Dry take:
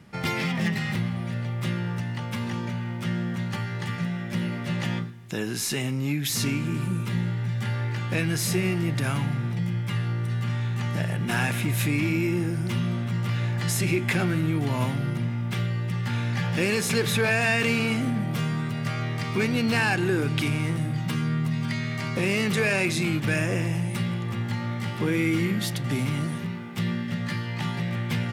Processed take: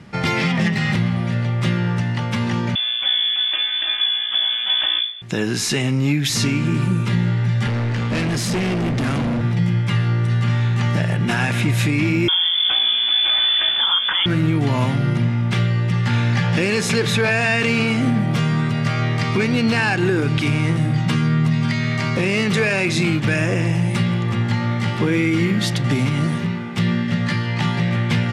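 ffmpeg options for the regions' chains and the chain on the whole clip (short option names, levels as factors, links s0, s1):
-filter_complex "[0:a]asettb=1/sr,asplit=3[s0][s1][s2];[s0]atrim=end=2.754[s3];[s1]atrim=start=2.75:end=5.22,asetpts=PTS-STARTPTS,afade=t=in:d=0.004:c=qsin,afade=t=out:st=2.466:d=0.004:c=qsin,highshelf=f=2000:g=-6.5,lowpass=f=3100:t=q:w=0.5098,lowpass=f=3100:t=q:w=0.6013,lowpass=f=3100:t=q:w=0.9,lowpass=f=3100:t=q:w=2.563,afreqshift=-3600[s4];[s2]atrim=start=5.216[s5];[s3][s4]acrossfade=d=0.004:c1=hsin:c2=qsin[s6];[s6][s5]acrossfade=d=0.004:c1=qsin:c2=hsin,asettb=1/sr,asplit=3[s7][s8][s9];[s7]atrim=end=7.674[s10];[s8]atrim=start=7.67:end=9.41,asetpts=PTS-STARTPTS,afade=t=in:d=0.004:c=qsin,afade=t=out:st=1.736:d=0.004:c=qsin,highpass=f=49:w=0.5412,highpass=f=49:w=1.3066,equalizer=f=240:t=o:w=0.37:g=14,asoftclip=type=hard:threshold=0.0422[s11];[s9]atrim=start=9.406[s12];[s10][s11]acrossfade=d=0.004:c1=hsin:c2=qsin[s13];[s13][s12]acrossfade=d=0.004:c1=qsin:c2=hsin,asettb=1/sr,asplit=3[s14][s15][s16];[s14]atrim=end=12.284[s17];[s15]atrim=start=12.28:end=14.26,asetpts=PTS-STARTPTS,afade=t=in:d=0.004:c=qsin,afade=t=out:st=1.976:d=0.004:c=qsin,equalizer=f=500:w=1.6:g=7,lowpass=f=3100:t=q:w=0.5098,lowpass=f=3100:t=q:w=0.6013,lowpass=f=3100:t=q:w=0.9,lowpass=f=3100:t=q:w=2.563,afreqshift=-3600[s18];[s16]atrim=start=14.256[s19];[s17][s18]acrossfade=d=0.004:c1=hsin:c2=qsin[s20];[s20][s19]acrossfade=d=0.004:c1=qsin:c2=hsin,lowpass=7300,alimiter=limit=0.119:level=0:latency=1:release=172,volume=2.82"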